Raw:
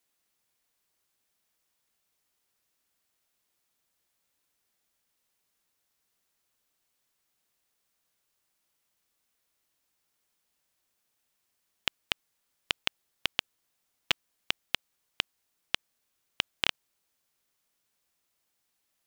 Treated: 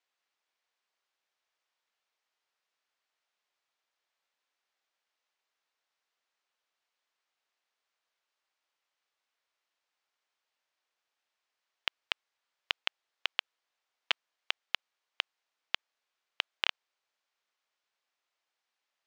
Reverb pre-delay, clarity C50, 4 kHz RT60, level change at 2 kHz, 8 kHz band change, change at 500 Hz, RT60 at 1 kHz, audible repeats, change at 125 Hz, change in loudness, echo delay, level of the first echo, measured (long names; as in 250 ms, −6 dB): no reverb audible, no reverb audible, no reverb audible, −2.0 dB, −10.5 dB, −5.0 dB, no reverb audible, no echo audible, below −25 dB, −2.5 dB, no echo audible, no echo audible